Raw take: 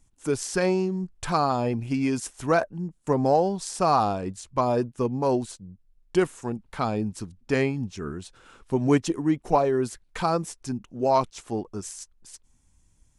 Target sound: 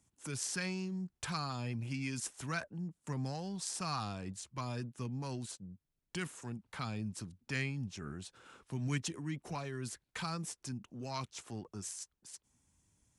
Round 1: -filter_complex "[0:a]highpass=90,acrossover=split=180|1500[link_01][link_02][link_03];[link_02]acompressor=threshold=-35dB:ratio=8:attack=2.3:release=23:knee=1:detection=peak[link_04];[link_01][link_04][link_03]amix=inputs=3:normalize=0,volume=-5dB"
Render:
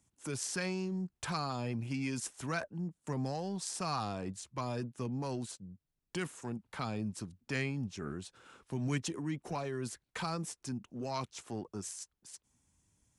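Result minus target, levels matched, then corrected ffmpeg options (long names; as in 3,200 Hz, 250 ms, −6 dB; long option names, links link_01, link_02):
downward compressor: peak gain reduction −8 dB
-filter_complex "[0:a]highpass=90,acrossover=split=180|1500[link_01][link_02][link_03];[link_02]acompressor=threshold=-44dB:ratio=8:attack=2.3:release=23:knee=1:detection=peak[link_04];[link_01][link_04][link_03]amix=inputs=3:normalize=0,volume=-5dB"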